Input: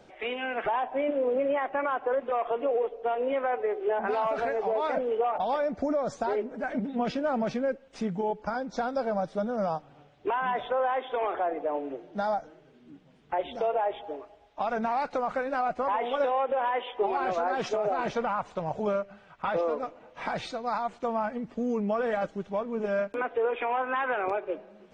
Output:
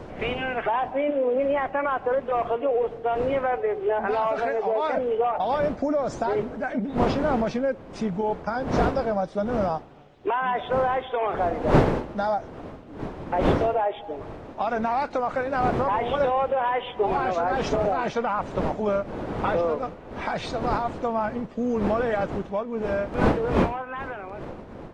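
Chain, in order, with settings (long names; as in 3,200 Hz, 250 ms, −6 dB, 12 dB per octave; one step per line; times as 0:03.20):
fade-out on the ending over 2.57 s
wind on the microphone 530 Hz −35 dBFS
level +3.5 dB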